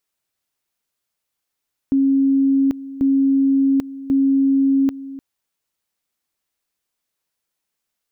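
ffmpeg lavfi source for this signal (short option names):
-f lavfi -i "aevalsrc='pow(10,(-12.5-16.5*gte(mod(t,1.09),0.79))/20)*sin(2*PI*272*t)':d=3.27:s=44100"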